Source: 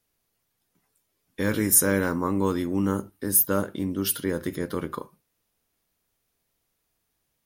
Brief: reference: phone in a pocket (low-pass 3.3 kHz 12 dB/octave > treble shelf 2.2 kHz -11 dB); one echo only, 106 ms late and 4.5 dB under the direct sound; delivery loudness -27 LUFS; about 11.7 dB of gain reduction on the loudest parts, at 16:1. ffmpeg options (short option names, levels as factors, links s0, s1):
-af "acompressor=threshold=0.0562:ratio=16,lowpass=3300,highshelf=f=2200:g=-11,aecho=1:1:106:0.596,volume=1.78"